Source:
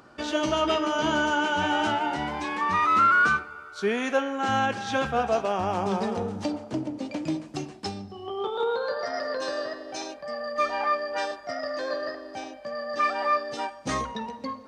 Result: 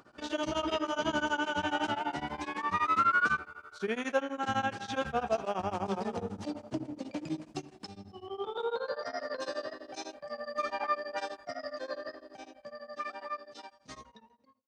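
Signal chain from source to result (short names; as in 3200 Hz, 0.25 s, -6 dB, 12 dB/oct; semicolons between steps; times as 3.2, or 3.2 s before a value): ending faded out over 3.57 s; 7.59–8.09 compressor 4:1, threshold -36 dBFS, peak gain reduction 7.5 dB; 13.53–14.16 bell 4600 Hz +11 dB -> +4 dB 1.1 oct; beating tremolo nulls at 12 Hz; gain -4 dB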